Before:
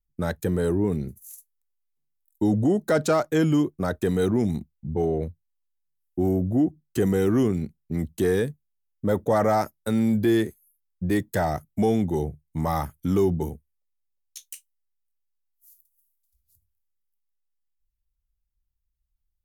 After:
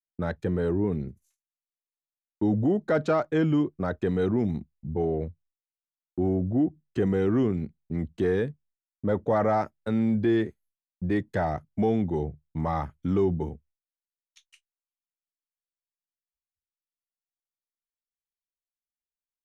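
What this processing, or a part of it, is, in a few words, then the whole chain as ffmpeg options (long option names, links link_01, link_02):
hearing-loss simulation: -af "lowpass=3000,agate=range=-33dB:threshold=-51dB:ratio=3:detection=peak,volume=-2.5dB"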